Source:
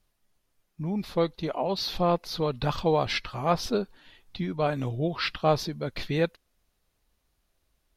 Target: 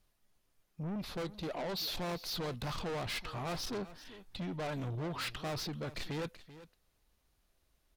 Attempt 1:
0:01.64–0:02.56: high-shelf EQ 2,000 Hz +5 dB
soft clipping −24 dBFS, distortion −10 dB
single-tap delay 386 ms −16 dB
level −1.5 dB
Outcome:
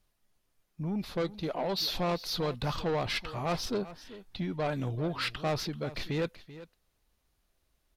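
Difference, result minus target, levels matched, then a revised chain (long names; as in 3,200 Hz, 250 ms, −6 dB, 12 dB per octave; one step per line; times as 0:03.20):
soft clipping: distortion −6 dB
0:01.64–0:02.56: high-shelf EQ 2,000 Hz +5 dB
soft clipping −34 dBFS, distortion −4 dB
single-tap delay 386 ms −16 dB
level −1.5 dB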